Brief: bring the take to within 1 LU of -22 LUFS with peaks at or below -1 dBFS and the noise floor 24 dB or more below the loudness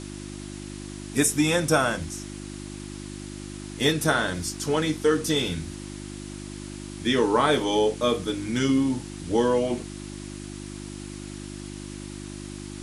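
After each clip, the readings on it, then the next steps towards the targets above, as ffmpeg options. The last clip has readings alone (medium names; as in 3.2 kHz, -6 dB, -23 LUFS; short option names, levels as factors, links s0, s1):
hum 50 Hz; highest harmonic 350 Hz; hum level -35 dBFS; noise floor -38 dBFS; noise floor target -49 dBFS; loudness -24.5 LUFS; peak level -7.0 dBFS; loudness target -22.0 LUFS
-> -af "bandreject=f=50:t=h:w=4,bandreject=f=100:t=h:w=4,bandreject=f=150:t=h:w=4,bandreject=f=200:t=h:w=4,bandreject=f=250:t=h:w=4,bandreject=f=300:t=h:w=4,bandreject=f=350:t=h:w=4"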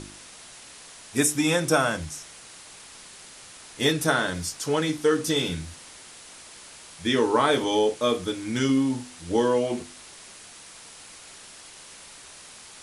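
hum not found; noise floor -46 dBFS; noise floor target -49 dBFS
-> -af "afftdn=nr=6:nf=-46"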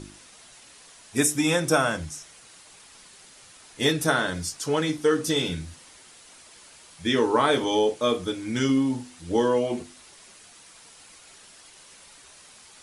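noise floor -51 dBFS; loudness -24.5 LUFS; peak level -7.5 dBFS; loudness target -22.0 LUFS
-> -af "volume=1.33"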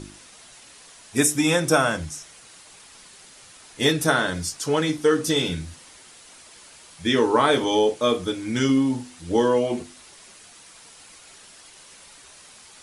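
loudness -22.0 LUFS; peak level -5.0 dBFS; noise floor -48 dBFS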